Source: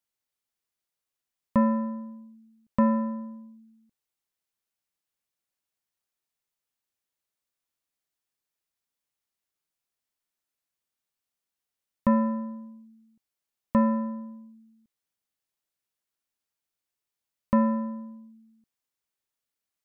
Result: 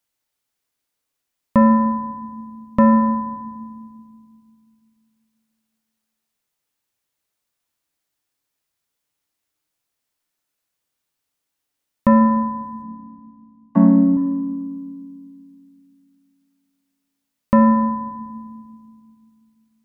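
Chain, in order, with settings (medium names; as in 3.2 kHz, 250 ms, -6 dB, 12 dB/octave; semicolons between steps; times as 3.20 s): 12.82–14.17 s: vocoder on a held chord minor triad, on F#3; FDN reverb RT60 1.8 s, low-frequency decay 1.6×, high-frequency decay 0.35×, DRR 9.5 dB; trim +8 dB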